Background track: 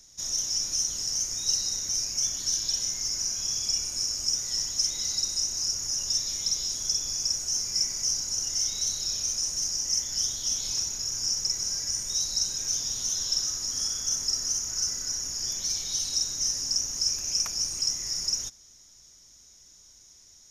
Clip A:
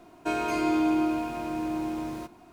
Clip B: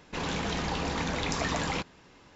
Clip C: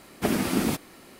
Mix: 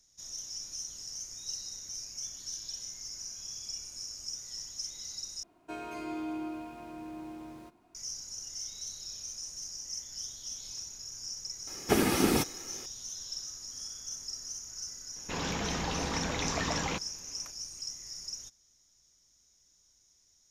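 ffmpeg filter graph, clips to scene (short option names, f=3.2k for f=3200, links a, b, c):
-filter_complex "[0:a]volume=-12.5dB[a];[3:a]aecho=1:1:2.4:0.38[b];[a]asplit=2[c][d];[c]atrim=end=5.434[e];[1:a]atrim=end=2.52,asetpts=PTS-STARTPTS,volume=-12.5dB[f];[d]atrim=start=7.946[g];[b]atrim=end=1.19,asetpts=PTS-STARTPTS,volume=-0.5dB,afade=t=in:d=0.004:c=hsin,afade=t=out:st=1.186:d=0.004:c=hsin,adelay=11670[h];[2:a]atrim=end=2.35,asetpts=PTS-STARTPTS,volume=-2.5dB,afade=t=in:d=0.004:c=hsin,afade=t=out:st=2.346:d=0.004:c=hsin,adelay=15160[i];[e][f]acrossfade=d=0.004:c1=hsin:c2=hsin[j];[j][g]acrossfade=d=0.004:c1=hsin:c2=hsin[k];[k][h][i]amix=inputs=3:normalize=0"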